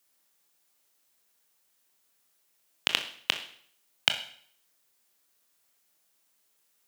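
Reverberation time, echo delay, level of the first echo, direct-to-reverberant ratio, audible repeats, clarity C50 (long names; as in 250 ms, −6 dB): 0.60 s, no echo audible, no echo audible, 6.0 dB, no echo audible, 10.5 dB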